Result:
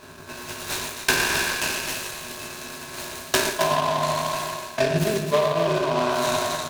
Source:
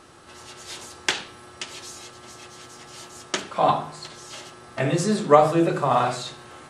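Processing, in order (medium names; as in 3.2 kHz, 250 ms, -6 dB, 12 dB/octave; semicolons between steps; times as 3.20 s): spectral sustain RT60 1.98 s; rippled EQ curve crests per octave 1.5, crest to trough 16 dB; reverse; compression 8:1, threshold -21 dBFS, peak gain reduction 17 dB; reverse; transient shaper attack +8 dB, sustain -9 dB; on a send: loudspeakers at several distances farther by 39 m -9 dB, 92 m -8 dB; on the sum: delay time shaken by noise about 2.4 kHz, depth 0.046 ms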